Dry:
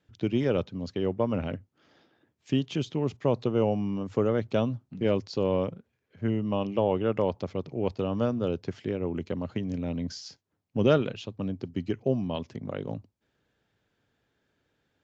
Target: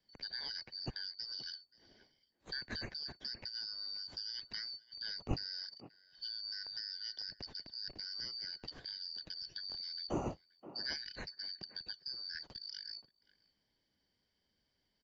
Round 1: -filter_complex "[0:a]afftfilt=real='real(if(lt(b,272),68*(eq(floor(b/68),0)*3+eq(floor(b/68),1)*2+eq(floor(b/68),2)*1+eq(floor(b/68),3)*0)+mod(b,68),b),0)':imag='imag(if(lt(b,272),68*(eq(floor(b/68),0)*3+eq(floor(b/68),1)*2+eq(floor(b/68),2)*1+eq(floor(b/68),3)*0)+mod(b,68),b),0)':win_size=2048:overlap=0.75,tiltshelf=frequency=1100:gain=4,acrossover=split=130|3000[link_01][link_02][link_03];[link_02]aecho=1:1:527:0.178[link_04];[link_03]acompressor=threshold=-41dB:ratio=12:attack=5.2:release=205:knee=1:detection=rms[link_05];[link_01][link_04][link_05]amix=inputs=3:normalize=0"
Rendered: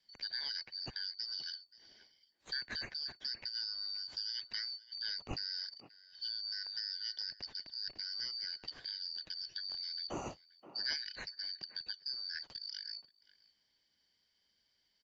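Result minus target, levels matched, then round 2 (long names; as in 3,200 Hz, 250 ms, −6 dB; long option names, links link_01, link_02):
1,000 Hz band −3.5 dB
-filter_complex "[0:a]afftfilt=real='real(if(lt(b,272),68*(eq(floor(b/68),0)*3+eq(floor(b/68),1)*2+eq(floor(b/68),2)*1+eq(floor(b/68),3)*0)+mod(b,68),b),0)':imag='imag(if(lt(b,272),68*(eq(floor(b/68),0)*3+eq(floor(b/68),1)*2+eq(floor(b/68),2)*1+eq(floor(b/68),3)*0)+mod(b,68),b),0)':win_size=2048:overlap=0.75,tiltshelf=frequency=1100:gain=11.5,acrossover=split=130|3000[link_01][link_02][link_03];[link_02]aecho=1:1:527:0.178[link_04];[link_03]acompressor=threshold=-41dB:ratio=12:attack=5.2:release=205:knee=1:detection=rms[link_05];[link_01][link_04][link_05]amix=inputs=3:normalize=0"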